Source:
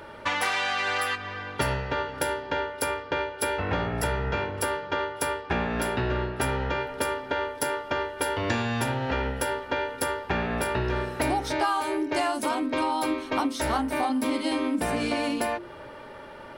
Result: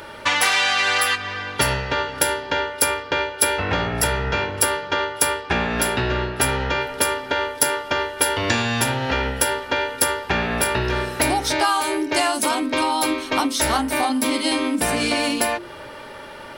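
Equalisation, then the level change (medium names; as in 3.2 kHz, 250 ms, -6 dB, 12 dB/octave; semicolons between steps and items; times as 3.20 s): treble shelf 2.4 kHz +10.5 dB; +4.0 dB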